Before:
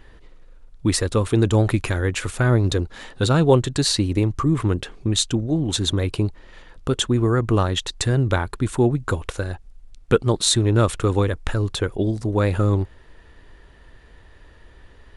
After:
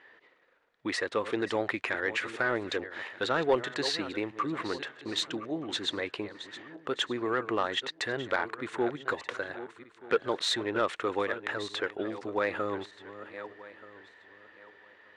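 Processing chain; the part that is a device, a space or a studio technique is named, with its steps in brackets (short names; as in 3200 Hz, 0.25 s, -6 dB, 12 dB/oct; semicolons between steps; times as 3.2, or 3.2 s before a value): regenerating reverse delay 0.615 s, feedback 45%, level -13.5 dB; intercom (BPF 460–3600 Hz; bell 1900 Hz +7.5 dB 0.49 oct; soft clip -10.5 dBFS, distortion -20 dB); gain -4.5 dB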